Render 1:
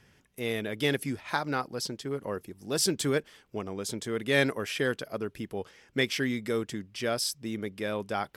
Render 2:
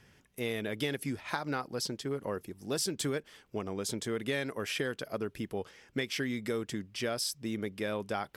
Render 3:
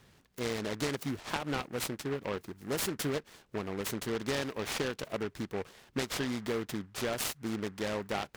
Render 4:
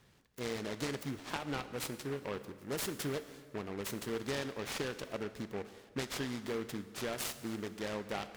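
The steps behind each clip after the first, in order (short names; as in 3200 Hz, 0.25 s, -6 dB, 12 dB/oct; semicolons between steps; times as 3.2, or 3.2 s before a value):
compressor 12:1, threshold -29 dBFS, peak gain reduction 11 dB
noise-modulated delay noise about 1300 Hz, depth 0.099 ms
plate-style reverb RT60 1.7 s, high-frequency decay 0.85×, DRR 11 dB; gain -4.5 dB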